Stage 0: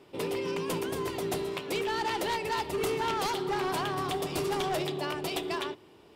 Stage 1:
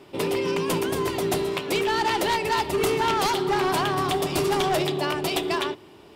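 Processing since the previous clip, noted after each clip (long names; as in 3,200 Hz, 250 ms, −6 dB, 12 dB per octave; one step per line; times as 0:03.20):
notch filter 480 Hz, Q 12
level +7.5 dB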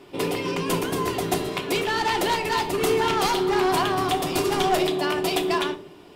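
convolution reverb RT60 0.55 s, pre-delay 3 ms, DRR 6 dB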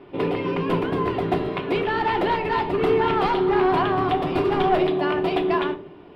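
high-frequency loss of the air 440 metres
level +3.5 dB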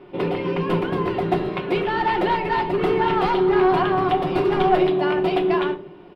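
comb filter 5.5 ms, depth 41%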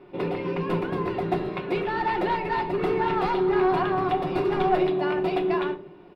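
notch filter 3,100 Hz, Q 12
level −4.5 dB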